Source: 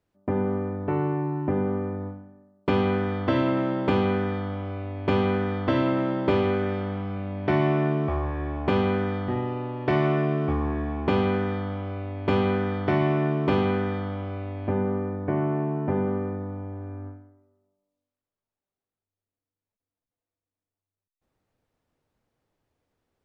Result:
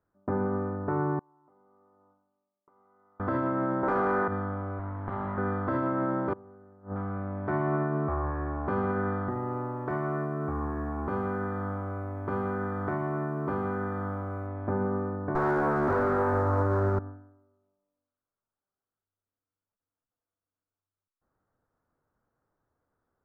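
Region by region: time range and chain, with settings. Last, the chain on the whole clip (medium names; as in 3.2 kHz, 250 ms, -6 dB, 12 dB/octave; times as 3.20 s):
1.19–3.20 s: differentiator + compression 8:1, threshold -58 dBFS + Savitzky-Golay filter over 65 samples
3.83–4.28 s: high-pass 150 Hz + overdrive pedal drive 23 dB, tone 1.7 kHz, clips at -9 dBFS
4.79–5.38 s: comb filter that takes the minimum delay 0.98 ms + steep low-pass 3.9 kHz 48 dB/octave + compression 5:1, threshold -28 dBFS
6.33–6.96 s: low-pass 1 kHz + inverted gate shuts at -21 dBFS, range -25 dB
9.29–14.47 s: modulation noise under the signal 34 dB + compression 3:1, threshold -26 dBFS
15.35–16.99 s: comb filter that takes the minimum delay 8.1 ms + peaking EQ 170 Hz -10 dB 0.63 oct + waveshaping leveller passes 5
whole clip: resonant high shelf 2 kHz -12.5 dB, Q 3; peak limiter -17 dBFS; trim -3 dB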